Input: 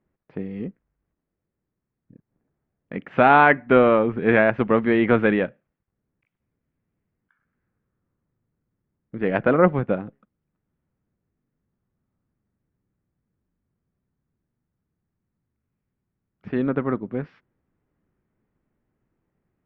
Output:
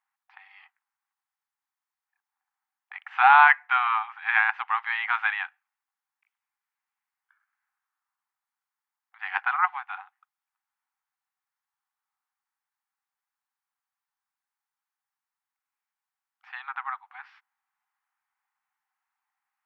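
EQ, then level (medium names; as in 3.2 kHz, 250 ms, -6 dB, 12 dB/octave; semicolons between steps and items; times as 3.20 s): brick-wall FIR high-pass 740 Hz; +1.0 dB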